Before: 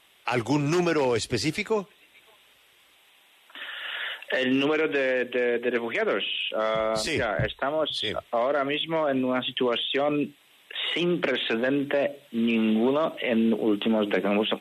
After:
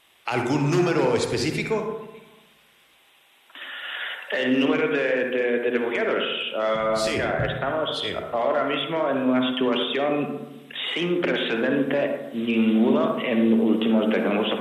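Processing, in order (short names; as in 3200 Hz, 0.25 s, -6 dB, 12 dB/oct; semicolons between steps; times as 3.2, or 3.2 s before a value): on a send: low shelf 210 Hz -7 dB + reverb RT60 1.0 s, pre-delay 48 ms, DRR 3 dB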